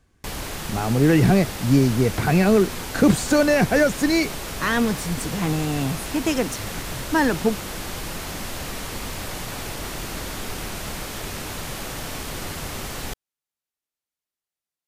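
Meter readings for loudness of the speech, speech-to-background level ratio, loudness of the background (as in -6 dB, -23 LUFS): -21.0 LUFS, 10.0 dB, -31.0 LUFS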